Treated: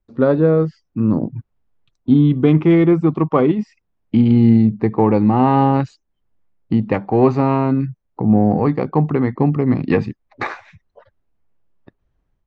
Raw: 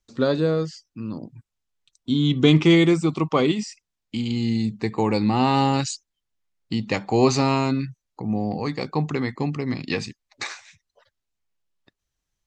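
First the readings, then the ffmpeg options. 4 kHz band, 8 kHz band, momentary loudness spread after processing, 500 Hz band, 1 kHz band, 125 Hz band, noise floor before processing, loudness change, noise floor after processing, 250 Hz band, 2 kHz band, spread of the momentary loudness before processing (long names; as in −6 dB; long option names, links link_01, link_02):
below −10 dB, below −20 dB, 15 LU, +6.0 dB, +5.5 dB, +7.0 dB, −83 dBFS, +6.0 dB, −71 dBFS, +7.5 dB, −0.5 dB, 17 LU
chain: -filter_complex "[0:a]asplit=2[link_01][link_02];[link_02]adynamicsmooth=sensitivity=1:basefreq=1100,volume=2dB[link_03];[link_01][link_03]amix=inputs=2:normalize=0,lowpass=1800,dynaudnorm=framelen=110:gausssize=5:maxgain=10dB,volume=-1dB"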